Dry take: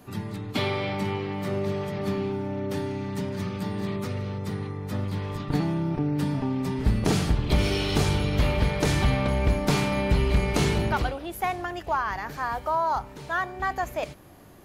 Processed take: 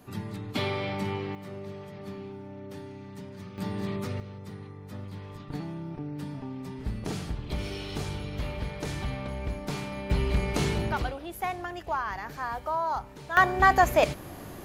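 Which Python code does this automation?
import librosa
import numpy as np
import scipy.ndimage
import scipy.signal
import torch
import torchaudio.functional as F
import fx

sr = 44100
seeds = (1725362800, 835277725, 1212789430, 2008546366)

y = fx.gain(x, sr, db=fx.steps((0.0, -3.0), (1.35, -12.0), (3.58, -2.5), (4.2, -10.5), (10.1, -4.0), (13.37, 8.5)))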